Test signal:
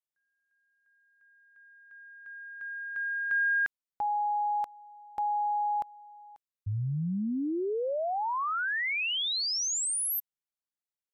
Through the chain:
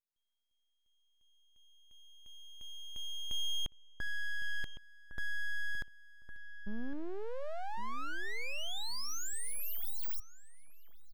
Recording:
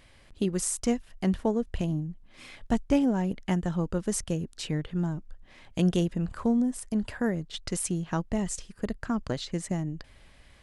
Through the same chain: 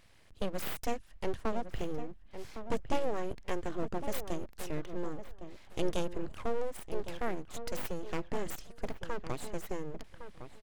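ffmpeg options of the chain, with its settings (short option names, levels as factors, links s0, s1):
-filter_complex "[0:a]aeval=exprs='abs(val(0))':c=same,asplit=2[s0][s1];[s1]adelay=1109,lowpass=f=1800:p=1,volume=0.316,asplit=2[s2][s3];[s3]adelay=1109,lowpass=f=1800:p=1,volume=0.17[s4];[s0][s2][s4]amix=inputs=3:normalize=0,volume=0.596"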